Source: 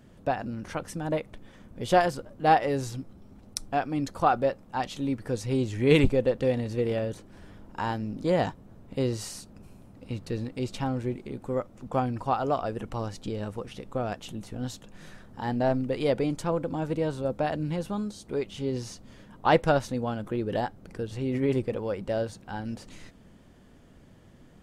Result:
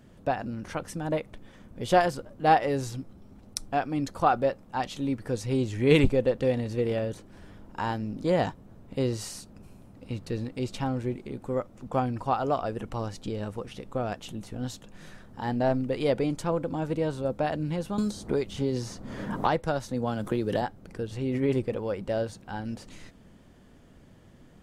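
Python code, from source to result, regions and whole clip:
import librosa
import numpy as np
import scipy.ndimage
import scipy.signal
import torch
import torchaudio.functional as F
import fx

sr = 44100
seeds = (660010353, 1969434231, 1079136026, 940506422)

y = fx.chain(x, sr, fx.peak_eq(hz=2700.0, db=-4.5, octaves=0.67),
    fx.band_squash(depth_pct=100), at=(17.98, 20.62))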